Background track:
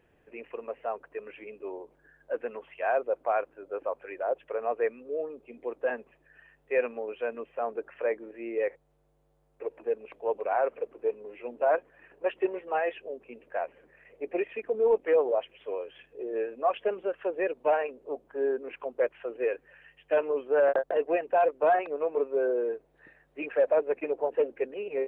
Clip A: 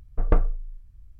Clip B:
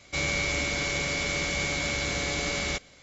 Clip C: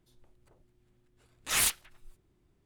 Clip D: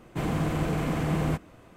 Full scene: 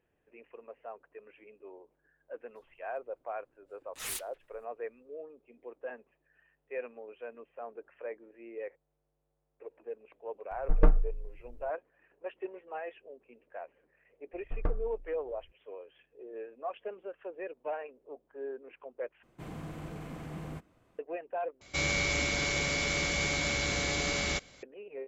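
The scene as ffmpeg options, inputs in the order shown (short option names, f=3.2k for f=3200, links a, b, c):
-filter_complex "[1:a]asplit=2[a][b];[0:a]volume=-11.5dB[c];[3:a]highshelf=f=10k:g=3.5[d];[a]aecho=1:1:6.5:0.76[e];[c]asplit=3[f][g][h];[f]atrim=end=19.234[i];[4:a]atrim=end=1.76,asetpts=PTS-STARTPTS,volume=-15dB[j];[g]atrim=start=20.986:end=21.614[k];[2:a]atrim=end=3.02,asetpts=PTS-STARTPTS,volume=-2dB[l];[h]atrim=start=24.626[m];[d]atrim=end=2.65,asetpts=PTS-STARTPTS,volume=-12.5dB,afade=t=in:d=0.004:c=hsin,afade=t=out:st=2.646:d=0.004:c=hsin,adelay=2490[n];[e]atrim=end=1.19,asetpts=PTS-STARTPTS,volume=-5dB,afade=t=in:d=0.004:c=hsin,afade=t=out:st=1.186:d=0.004:c=hsin,adelay=10510[o];[b]atrim=end=1.19,asetpts=PTS-STARTPTS,volume=-12dB,afade=t=in:d=0.004:c=hsin,afade=t=out:st=1.186:d=0.004:c=hsin,adelay=14330[p];[i][j]acrossfade=d=0.004:c1=hsin:c2=hsin[q];[q][k]acrossfade=d=0.004:c1=hsin:c2=hsin[r];[r][l]acrossfade=d=0.004:c1=hsin:c2=hsin[s];[s][m]acrossfade=d=0.004:c1=hsin:c2=hsin[t];[t][n][o][p]amix=inputs=4:normalize=0"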